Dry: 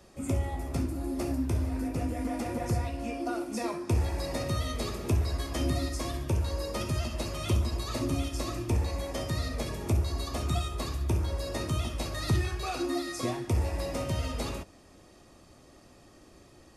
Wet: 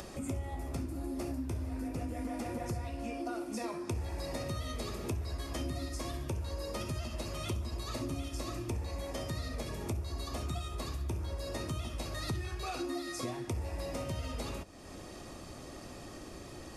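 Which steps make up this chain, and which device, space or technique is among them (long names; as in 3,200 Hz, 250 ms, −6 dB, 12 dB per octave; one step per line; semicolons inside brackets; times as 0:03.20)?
upward and downward compression (upward compression, threshold −31 dBFS; downward compressor 4 to 1, threshold −30 dBFS, peak gain reduction 7.5 dB)
level −3.5 dB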